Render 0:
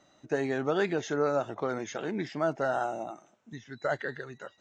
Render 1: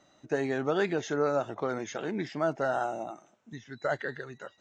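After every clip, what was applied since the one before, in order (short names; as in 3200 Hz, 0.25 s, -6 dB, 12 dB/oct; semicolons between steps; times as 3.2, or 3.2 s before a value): nothing audible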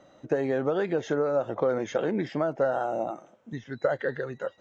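compressor, threshold -31 dBFS, peak gain reduction 9 dB; high shelf 2700 Hz -11 dB; small resonant body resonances 520/3200 Hz, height 10 dB, ringing for 45 ms; gain +7 dB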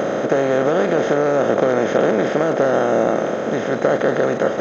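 per-bin compression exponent 0.2; gain +2.5 dB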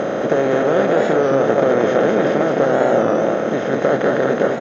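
air absorption 52 m; echo 0.214 s -3.5 dB; record warp 33 1/3 rpm, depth 100 cents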